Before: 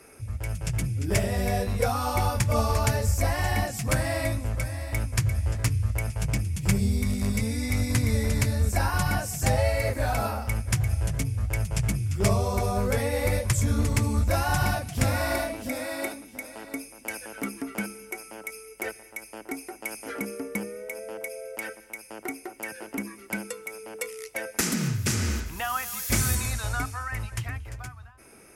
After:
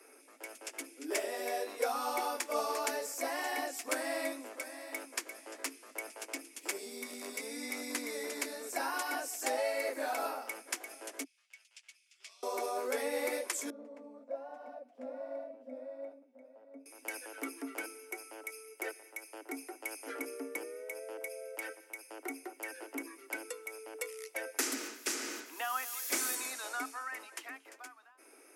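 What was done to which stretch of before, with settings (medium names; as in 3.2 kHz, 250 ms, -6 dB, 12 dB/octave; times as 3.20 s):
11.24–12.43 s: ladder band-pass 3.8 kHz, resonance 30%
13.70–16.86 s: two resonant band-passes 360 Hz, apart 1.2 oct
whole clip: steep high-pass 260 Hz 96 dB/octave; trim -6.5 dB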